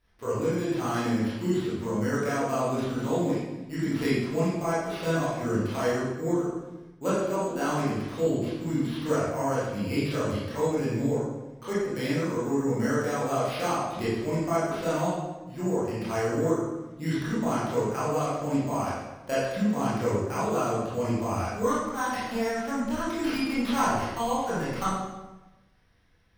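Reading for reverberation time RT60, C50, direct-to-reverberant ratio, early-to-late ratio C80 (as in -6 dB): 1.1 s, -1.5 dB, -10.0 dB, 2.0 dB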